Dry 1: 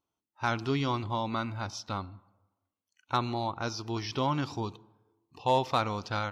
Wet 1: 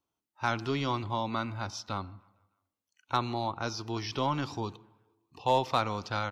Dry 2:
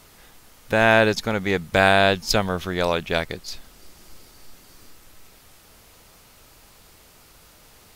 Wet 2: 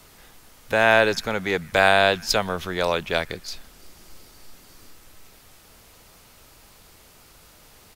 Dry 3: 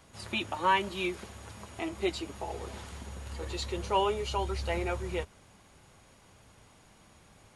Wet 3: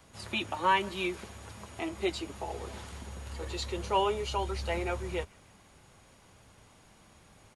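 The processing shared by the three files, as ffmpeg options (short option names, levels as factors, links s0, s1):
-filter_complex "[0:a]acrossover=split=330|1200|2600[s0][s1][s2][s3];[s0]asoftclip=type=tanh:threshold=0.0299[s4];[s2]aecho=1:1:152|304|456|608:0.0944|0.0491|0.0255|0.0133[s5];[s4][s1][s5][s3]amix=inputs=4:normalize=0"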